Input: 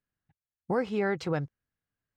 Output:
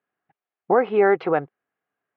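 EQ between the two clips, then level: speaker cabinet 300–2700 Hz, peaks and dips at 400 Hz +6 dB, 730 Hz +8 dB, 1200 Hz +4 dB; +8.0 dB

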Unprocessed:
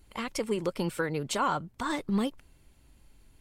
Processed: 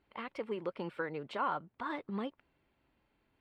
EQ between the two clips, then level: HPF 490 Hz 6 dB/oct; air absorption 420 m; -2.5 dB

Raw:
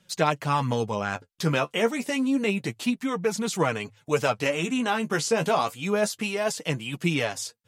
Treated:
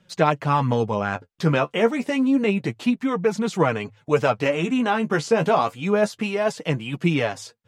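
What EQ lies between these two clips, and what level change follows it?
LPF 1900 Hz 6 dB/oct; +5.0 dB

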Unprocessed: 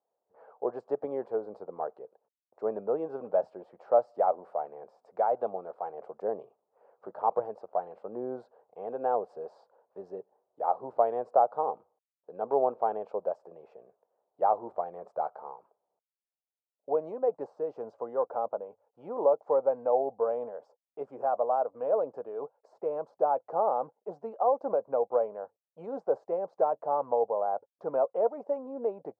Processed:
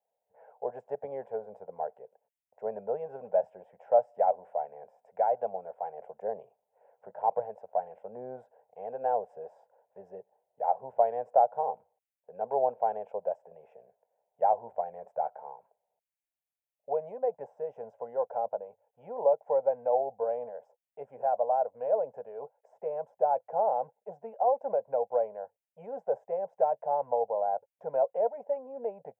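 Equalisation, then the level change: fixed phaser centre 1200 Hz, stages 6; +1.0 dB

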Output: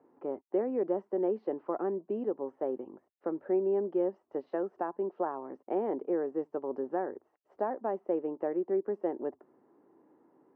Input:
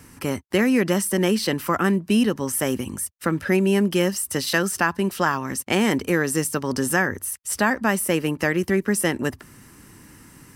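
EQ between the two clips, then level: Chebyshev band-pass 360–780 Hz, order 2; air absorption 130 m; -5.5 dB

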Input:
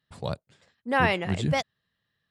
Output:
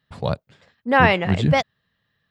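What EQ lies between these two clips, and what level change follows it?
bell 350 Hz -3.5 dB 0.26 oct; bell 9200 Hz -12 dB 1.3 oct; +8.0 dB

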